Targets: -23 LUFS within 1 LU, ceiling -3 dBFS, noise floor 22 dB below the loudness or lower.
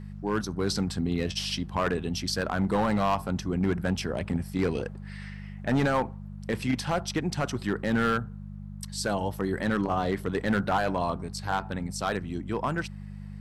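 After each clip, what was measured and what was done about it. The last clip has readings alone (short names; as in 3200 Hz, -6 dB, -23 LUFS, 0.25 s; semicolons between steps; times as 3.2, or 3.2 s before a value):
clipped 1.2%; flat tops at -19.0 dBFS; hum 50 Hz; harmonics up to 200 Hz; hum level -37 dBFS; loudness -29.0 LUFS; peak -19.0 dBFS; loudness target -23.0 LUFS
-> clip repair -19 dBFS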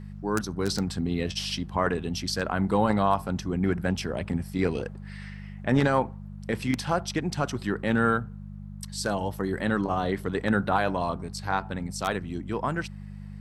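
clipped 0.0%; hum 50 Hz; harmonics up to 200 Hz; hum level -37 dBFS
-> de-hum 50 Hz, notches 4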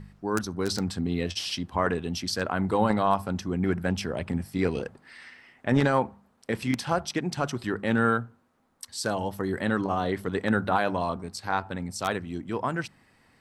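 hum none; loudness -28.0 LUFS; peak -9.5 dBFS; loudness target -23.0 LUFS
-> gain +5 dB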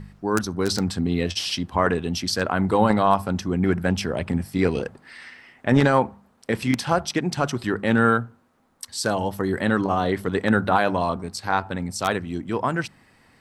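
loudness -23.0 LUFS; peak -4.5 dBFS; noise floor -59 dBFS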